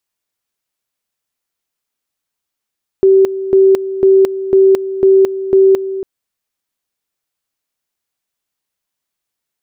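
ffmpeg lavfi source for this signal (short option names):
-f lavfi -i "aevalsrc='pow(10,(-4.5-13*gte(mod(t,0.5),0.22))/20)*sin(2*PI*385*t)':d=3:s=44100"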